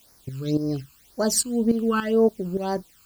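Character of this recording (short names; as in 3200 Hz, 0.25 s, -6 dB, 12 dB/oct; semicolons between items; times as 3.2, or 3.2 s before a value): tremolo saw up 3.5 Hz, depth 75%; a quantiser's noise floor 10-bit, dither triangular; phasing stages 12, 1.9 Hz, lowest notch 600–3100 Hz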